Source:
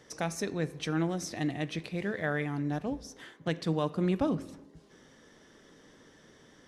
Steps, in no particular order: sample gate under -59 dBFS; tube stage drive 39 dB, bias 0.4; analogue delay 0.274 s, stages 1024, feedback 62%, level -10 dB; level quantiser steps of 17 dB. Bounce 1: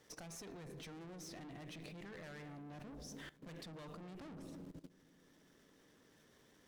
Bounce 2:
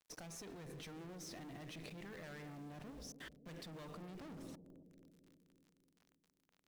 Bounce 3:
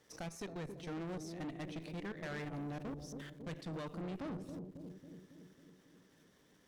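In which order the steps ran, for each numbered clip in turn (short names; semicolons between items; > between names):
sample gate > tube stage > analogue delay > level quantiser; tube stage > level quantiser > sample gate > analogue delay; sample gate > level quantiser > analogue delay > tube stage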